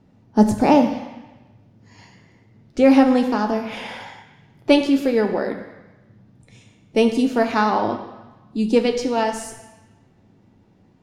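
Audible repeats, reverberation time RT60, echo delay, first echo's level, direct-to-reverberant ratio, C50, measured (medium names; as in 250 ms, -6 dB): no echo, 1.1 s, no echo, no echo, 4.0 dB, 8.5 dB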